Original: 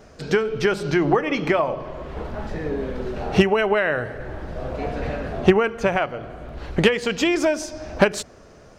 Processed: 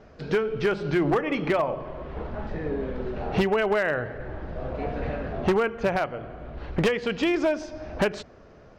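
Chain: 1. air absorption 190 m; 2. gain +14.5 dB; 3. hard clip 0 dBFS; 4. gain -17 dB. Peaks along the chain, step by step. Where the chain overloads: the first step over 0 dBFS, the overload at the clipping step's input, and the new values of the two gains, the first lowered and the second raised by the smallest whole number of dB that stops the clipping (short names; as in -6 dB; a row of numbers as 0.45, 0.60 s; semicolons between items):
-5.0, +9.5, 0.0, -17.0 dBFS; step 2, 9.5 dB; step 2 +4.5 dB, step 4 -7 dB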